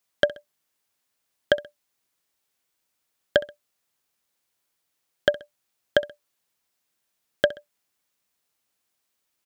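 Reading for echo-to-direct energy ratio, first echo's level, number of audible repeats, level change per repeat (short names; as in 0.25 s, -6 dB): -18.5 dB, -19.0 dB, 2, -8.0 dB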